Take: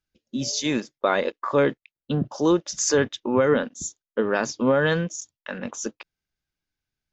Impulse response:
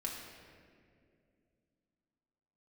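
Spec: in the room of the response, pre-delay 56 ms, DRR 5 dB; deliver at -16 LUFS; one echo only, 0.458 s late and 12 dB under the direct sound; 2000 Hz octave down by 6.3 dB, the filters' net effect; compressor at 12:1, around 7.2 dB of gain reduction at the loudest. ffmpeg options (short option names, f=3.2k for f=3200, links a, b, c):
-filter_complex "[0:a]equalizer=f=2k:t=o:g=-9,acompressor=threshold=-22dB:ratio=12,aecho=1:1:458:0.251,asplit=2[a][b];[1:a]atrim=start_sample=2205,adelay=56[c];[b][c]afir=irnorm=-1:irlink=0,volume=-6dB[d];[a][d]amix=inputs=2:normalize=0,volume=12dB"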